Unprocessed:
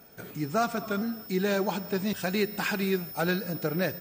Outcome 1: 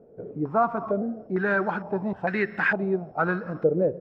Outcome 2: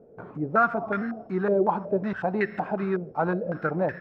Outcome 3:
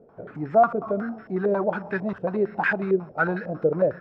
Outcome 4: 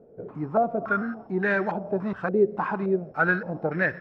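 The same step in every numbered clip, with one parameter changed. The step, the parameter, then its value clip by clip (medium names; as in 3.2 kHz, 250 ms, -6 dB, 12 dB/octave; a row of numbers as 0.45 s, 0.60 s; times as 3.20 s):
step-sequenced low-pass, rate: 2.2 Hz, 5.4 Hz, 11 Hz, 3.5 Hz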